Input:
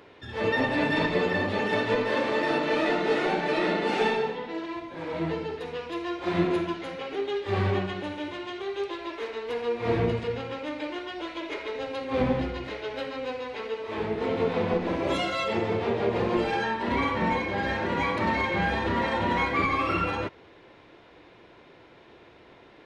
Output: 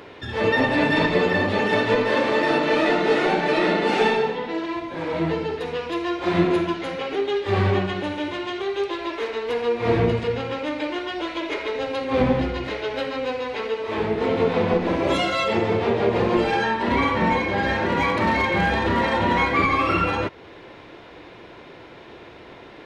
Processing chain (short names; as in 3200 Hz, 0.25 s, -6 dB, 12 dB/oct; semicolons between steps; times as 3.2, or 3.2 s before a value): in parallel at -2 dB: compressor 6:1, threshold -40 dBFS, peak gain reduction 19 dB; 17.77–19.18 on the sum: overloaded stage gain 17.5 dB; gain +4.5 dB